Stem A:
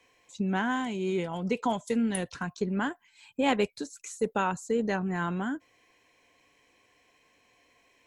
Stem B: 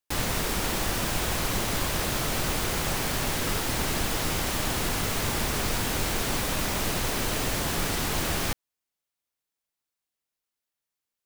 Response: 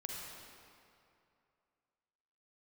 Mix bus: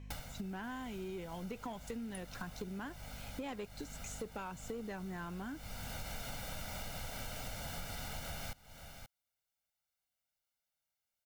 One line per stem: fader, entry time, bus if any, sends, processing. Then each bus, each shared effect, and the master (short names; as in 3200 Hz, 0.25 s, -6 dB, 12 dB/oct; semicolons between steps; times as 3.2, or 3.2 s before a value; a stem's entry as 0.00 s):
-3.5 dB, 0.00 s, no send, no echo send, hum 50 Hz, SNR 14 dB; soft clip -20 dBFS, distortion -18 dB
-4.0 dB, 0.00 s, no send, echo send -23 dB, comb 1.4 ms, depth 80%; auto duck -22 dB, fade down 0.30 s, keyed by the first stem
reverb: off
echo: echo 0.53 s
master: bell 8500 Hz -2 dB; compressor 10:1, threshold -40 dBFS, peak gain reduction 16 dB